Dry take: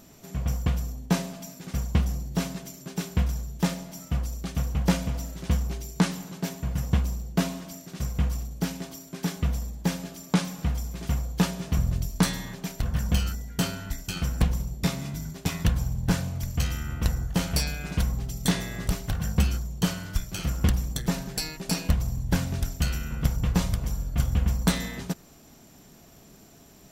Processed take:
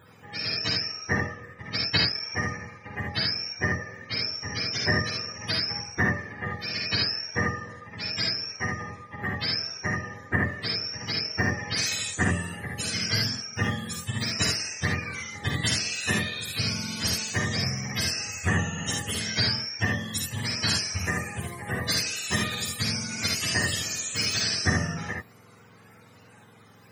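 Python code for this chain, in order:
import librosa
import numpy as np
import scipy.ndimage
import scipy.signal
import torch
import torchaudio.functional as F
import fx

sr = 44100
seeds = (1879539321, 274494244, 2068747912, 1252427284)

y = fx.octave_mirror(x, sr, pivot_hz=570.0)
y = fx.transient(y, sr, attack_db=5, sustain_db=-7, at=(1.21, 2.22))
y = fx.room_early_taps(y, sr, ms=(51, 75), db=(-4.5, -4.0))
y = y * librosa.db_to_amplitude(1.5)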